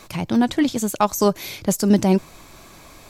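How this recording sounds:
background noise floor −46 dBFS
spectral slope −5.5 dB per octave

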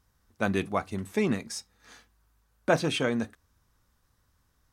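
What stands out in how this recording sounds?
background noise floor −71 dBFS
spectral slope −5.0 dB per octave

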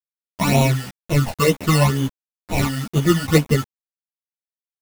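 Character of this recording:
aliases and images of a low sample rate 1,600 Hz, jitter 0%
phaser sweep stages 12, 2.1 Hz, lowest notch 360–1,700 Hz
a quantiser's noise floor 6 bits, dither none
a shimmering, thickened sound

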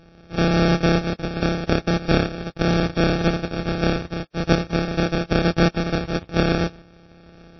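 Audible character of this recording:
a buzz of ramps at a fixed pitch in blocks of 256 samples
tremolo saw up 0.88 Hz, depth 50%
aliases and images of a low sample rate 1,000 Hz, jitter 0%
MP3

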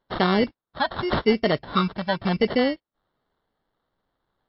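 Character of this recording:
phaser sweep stages 6, 0.86 Hz, lowest notch 390–1,900 Hz
aliases and images of a low sample rate 2,500 Hz, jitter 0%
MP3

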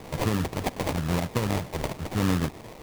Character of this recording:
a quantiser's noise floor 8 bits, dither triangular
phaser sweep stages 2, 0.98 Hz, lowest notch 230–1,400 Hz
aliases and images of a low sample rate 1,500 Hz, jitter 20%

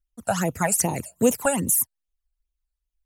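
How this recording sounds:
phaser sweep stages 12, 2.5 Hz, lowest notch 330–1,700 Hz

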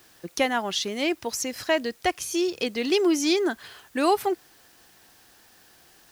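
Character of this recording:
a quantiser's noise floor 10 bits, dither triangular

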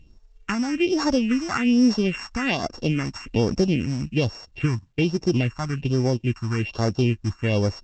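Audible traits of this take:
a buzz of ramps at a fixed pitch in blocks of 16 samples
phaser sweep stages 4, 1.2 Hz, lowest notch 460–2,900 Hz
mu-law

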